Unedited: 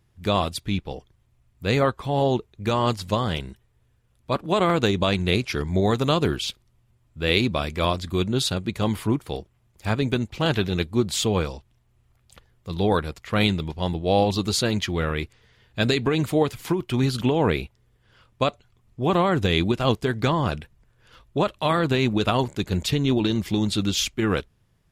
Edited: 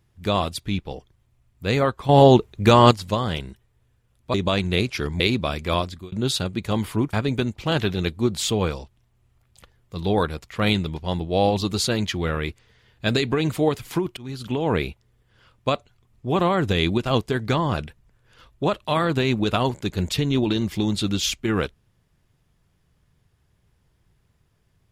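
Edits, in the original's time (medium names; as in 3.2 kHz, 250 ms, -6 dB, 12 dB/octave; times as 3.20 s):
2.09–2.91 s: gain +9 dB
4.34–4.89 s: delete
5.75–7.31 s: delete
7.91–8.23 s: fade out
9.24–9.87 s: delete
16.91–17.54 s: fade in, from -22.5 dB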